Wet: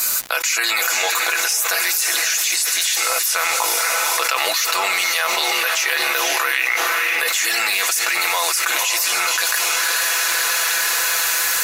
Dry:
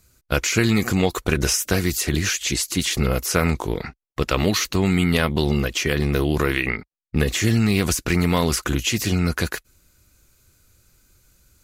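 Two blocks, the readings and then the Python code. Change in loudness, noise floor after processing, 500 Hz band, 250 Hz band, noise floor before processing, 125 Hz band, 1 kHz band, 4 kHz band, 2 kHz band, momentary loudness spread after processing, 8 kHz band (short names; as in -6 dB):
+4.5 dB, -21 dBFS, -4.5 dB, -21.0 dB, -67 dBFS, under -35 dB, +8.5 dB, +8.0 dB, +9.5 dB, 1 LU, +9.5 dB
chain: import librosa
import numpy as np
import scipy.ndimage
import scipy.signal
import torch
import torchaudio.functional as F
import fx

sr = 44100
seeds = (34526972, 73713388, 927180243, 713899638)

p1 = scipy.signal.sosfilt(scipy.signal.butter(4, 740.0, 'highpass', fs=sr, output='sos'), x)
p2 = fx.high_shelf(p1, sr, hz=9300.0, db=9.0)
p3 = fx.notch(p2, sr, hz=3200.0, q=16.0)
p4 = p3 + 0.65 * np.pad(p3, (int(6.0 * sr / 1000.0), 0))[:len(p3)]
p5 = fx.dmg_crackle(p4, sr, seeds[0], per_s=300.0, level_db=-56.0)
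p6 = p5 + fx.echo_diffused(p5, sr, ms=497, feedback_pct=48, wet_db=-8.5, dry=0)
p7 = fx.env_flatten(p6, sr, amount_pct=100)
y = p7 * 10.0 ** (-4.0 / 20.0)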